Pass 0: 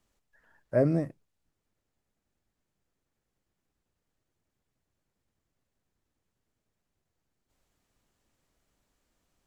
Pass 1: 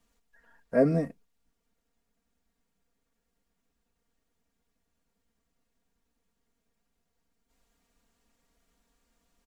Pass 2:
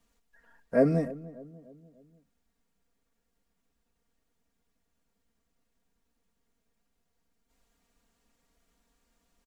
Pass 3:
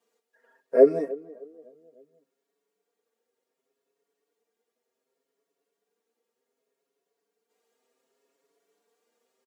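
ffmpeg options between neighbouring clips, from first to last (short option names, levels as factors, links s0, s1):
-af "aecho=1:1:4.3:0.92"
-filter_complex "[0:a]asplit=2[s0][s1];[s1]adelay=296,lowpass=f=910:p=1,volume=0.141,asplit=2[s2][s3];[s3]adelay=296,lowpass=f=910:p=1,volume=0.51,asplit=2[s4][s5];[s5]adelay=296,lowpass=f=910:p=1,volume=0.51,asplit=2[s6][s7];[s7]adelay=296,lowpass=f=910:p=1,volume=0.51[s8];[s0][s2][s4][s6][s8]amix=inputs=5:normalize=0"
-filter_complex "[0:a]highpass=f=410:t=q:w=4.9,asplit=2[s0][s1];[s1]adelay=6.4,afreqshift=0.67[s2];[s0][s2]amix=inputs=2:normalize=1"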